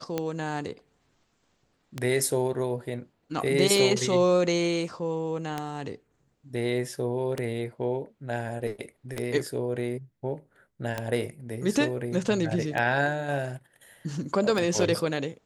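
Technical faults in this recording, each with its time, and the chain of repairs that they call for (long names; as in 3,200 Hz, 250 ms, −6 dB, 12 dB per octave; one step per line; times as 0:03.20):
scratch tick 33 1/3 rpm −14 dBFS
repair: click removal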